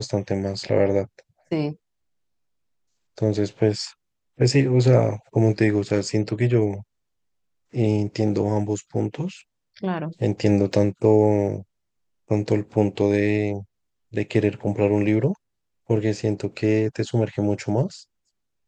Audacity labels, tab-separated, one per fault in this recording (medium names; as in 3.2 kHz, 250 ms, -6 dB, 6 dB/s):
10.730000	10.730000	dropout 2.2 ms